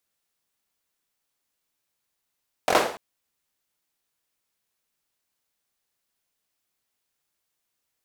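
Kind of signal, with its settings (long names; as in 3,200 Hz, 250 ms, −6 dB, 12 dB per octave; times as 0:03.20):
synth clap length 0.29 s, apart 23 ms, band 600 Hz, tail 0.49 s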